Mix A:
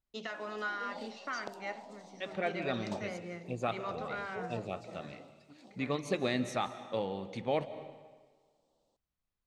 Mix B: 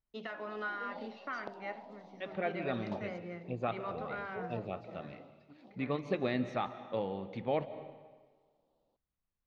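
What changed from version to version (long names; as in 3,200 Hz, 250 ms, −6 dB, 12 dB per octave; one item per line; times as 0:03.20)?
master: add high-frequency loss of the air 260 metres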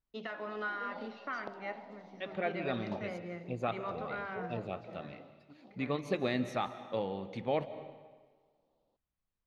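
first voice: send +11.5 dB
second voice: remove high-frequency loss of the air 140 metres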